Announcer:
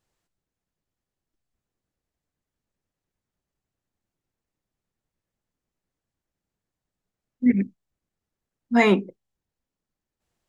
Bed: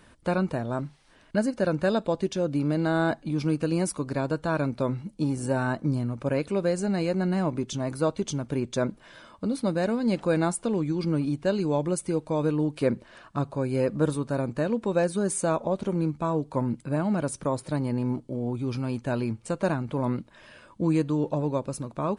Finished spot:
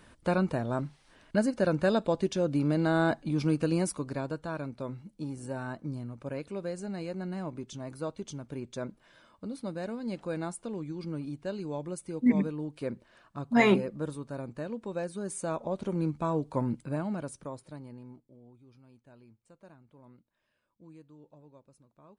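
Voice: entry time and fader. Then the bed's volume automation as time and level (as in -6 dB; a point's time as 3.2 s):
4.80 s, -4.5 dB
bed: 3.7 s -1.5 dB
4.63 s -10.5 dB
15.17 s -10.5 dB
16.1 s -3 dB
16.75 s -3 dB
18.66 s -28.5 dB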